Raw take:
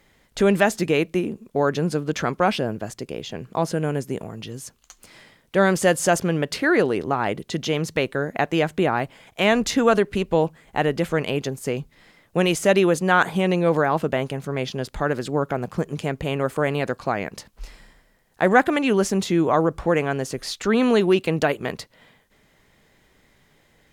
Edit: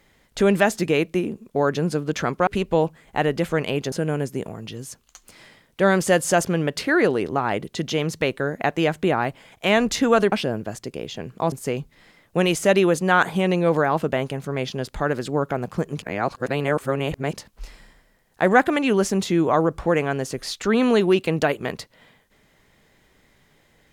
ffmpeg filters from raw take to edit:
-filter_complex "[0:a]asplit=7[s0][s1][s2][s3][s4][s5][s6];[s0]atrim=end=2.472[s7];[s1]atrim=start=10.068:end=11.522[s8];[s2]atrim=start=3.668:end=10.072[s9];[s3]atrim=start=2.468:end=3.672[s10];[s4]atrim=start=11.518:end=16.022[s11];[s5]atrim=start=16.018:end=17.332,asetpts=PTS-STARTPTS,areverse[s12];[s6]atrim=start=17.328[s13];[s7][s8]acrossfade=d=0.004:c1=hsin:c2=hsin[s14];[s14][s9]acrossfade=d=0.004:c1=hsin:c2=hsin[s15];[s15][s10]acrossfade=d=0.004:c1=hsin:c2=hsin[s16];[s16][s11]acrossfade=d=0.004:c1=hsin:c2=hsin[s17];[s17][s12]acrossfade=d=0.004:c1=hsin:c2=hsin[s18];[s18][s13]acrossfade=d=0.004:c1=hsin:c2=hsin"

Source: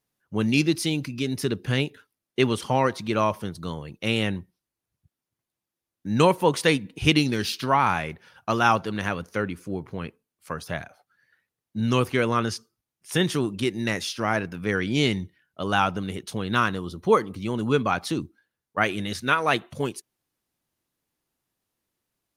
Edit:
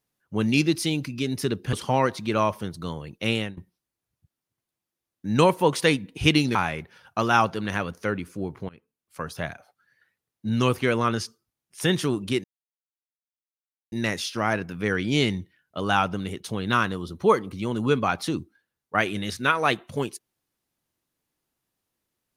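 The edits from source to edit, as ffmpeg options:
-filter_complex "[0:a]asplit=6[s0][s1][s2][s3][s4][s5];[s0]atrim=end=1.732[s6];[s1]atrim=start=2.538:end=4.38,asetpts=PTS-STARTPTS,afade=t=out:st=1.592:d=0.25:silence=0.0944061[s7];[s2]atrim=start=4.38:end=7.362,asetpts=PTS-STARTPTS,afade=t=in:d=0.004:c=hsin:silence=0.0944061[s8];[s3]atrim=start=7.858:end=10,asetpts=PTS-STARTPTS,afade=t=out:st=2.138:d=0.004:c=hsin:silence=0.0749894[s9];[s4]atrim=start=10:end=13.75,asetpts=PTS-STARTPTS,afade=t=in:d=0.57:silence=0.0749894,afade=t=out:st=3.746:d=0.004:c=hsin,apad=pad_dur=1.48[s10];[s5]atrim=start=13.75,asetpts=PTS-STARTPTS,afade=t=in:d=0.004:c=hsin[s11];[s7][s8]concat=n=2:v=0:a=1[s12];[s6][s12]acrossfade=d=0.004:c1=hsin:c2=hsin[s13];[s9][s10][s11]concat=n=3:v=0:a=1[s14];[s13][s14]acrossfade=d=0.004:c1=hsin:c2=hsin"

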